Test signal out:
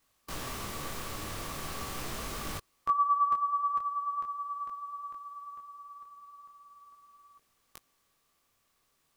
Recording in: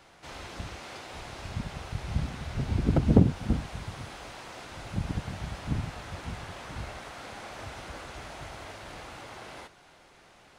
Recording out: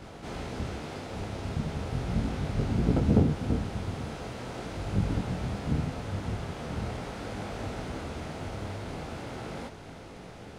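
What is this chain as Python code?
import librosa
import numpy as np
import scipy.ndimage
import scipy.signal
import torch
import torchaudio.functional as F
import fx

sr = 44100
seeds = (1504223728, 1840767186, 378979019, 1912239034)

y = fx.bin_compress(x, sr, power=0.6)
y = fx.detune_double(y, sr, cents=14)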